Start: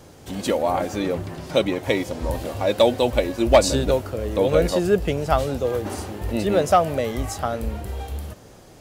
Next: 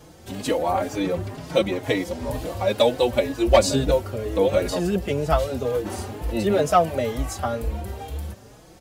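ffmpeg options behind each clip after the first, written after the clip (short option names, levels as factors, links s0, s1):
-filter_complex "[0:a]asplit=2[s0][s1];[s1]adelay=4.3,afreqshift=2.1[s2];[s0][s2]amix=inputs=2:normalize=1,volume=1.26"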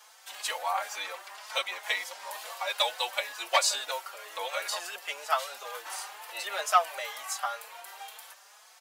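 -af "highpass=f=920:w=0.5412,highpass=f=920:w=1.3066"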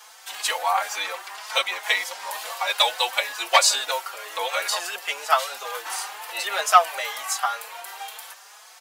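-af "bandreject=f=590:w=12,volume=2.51"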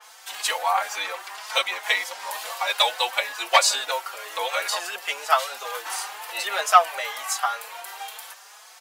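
-af "adynamicequalizer=threshold=0.0224:dfrequency=3300:dqfactor=0.7:tfrequency=3300:tqfactor=0.7:attack=5:release=100:ratio=0.375:range=2:mode=cutabove:tftype=highshelf"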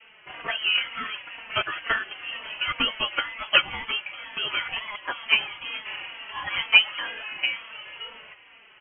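-af "lowpass=f=3100:t=q:w=0.5098,lowpass=f=3100:t=q:w=0.6013,lowpass=f=3100:t=q:w=0.9,lowpass=f=3100:t=q:w=2.563,afreqshift=-3700,volume=0.841"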